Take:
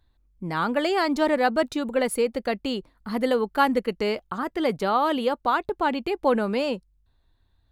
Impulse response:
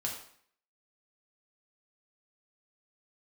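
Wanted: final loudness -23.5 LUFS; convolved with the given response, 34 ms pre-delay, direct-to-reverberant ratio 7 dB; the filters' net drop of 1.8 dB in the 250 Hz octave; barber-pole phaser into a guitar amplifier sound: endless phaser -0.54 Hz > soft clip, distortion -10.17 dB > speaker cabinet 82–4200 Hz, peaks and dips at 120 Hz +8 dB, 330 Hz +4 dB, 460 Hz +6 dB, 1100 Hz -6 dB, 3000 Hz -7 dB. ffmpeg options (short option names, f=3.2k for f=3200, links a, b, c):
-filter_complex "[0:a]equalizer=f=250:t=o:g=-5,asplit=2[a][b];[1:a]atrim=start_sample=2205,adelay=34[c];[b][c]afir=irnorm=-1:irlink=0,volume=-9.5dB[d];[a][d]amix=inputs=2:normalize=0,asplit=2[e][f];[f]afreqshift=-0.54[g];[e][g]amix=inputs=2:normalize=1,asoftclip=threshold=-25dB,highpass=82,equalizer=f=120:t=q:w=4:g=8,equalizer=f=330:t=q:w=4:g=4,equalizer=f=460:t=q:w=4:g=6,equalizer=f=1.1k:t=q:w=4:g=-6,equalizer=f=3k:t=q:w=4:g=-7,lowpass=f=4.2k:w=0.5412,lowpass=f=4.2k:w=1.3066,volume=6.5dB"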